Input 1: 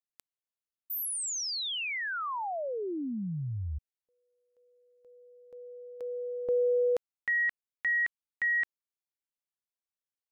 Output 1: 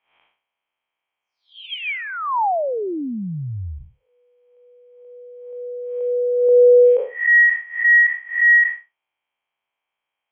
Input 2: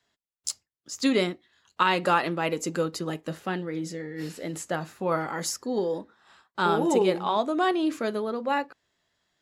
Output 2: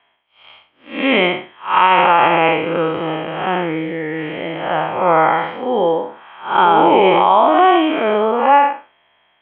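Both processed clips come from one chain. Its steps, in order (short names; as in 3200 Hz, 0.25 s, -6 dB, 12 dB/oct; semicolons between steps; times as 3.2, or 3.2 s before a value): time blur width 0.192 s; rippled Chebyshev low-pass 3300 Hz, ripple 9 dB; low shelf 430 Hz -11.5 dB; maximiser +28 dB; gain -1 dB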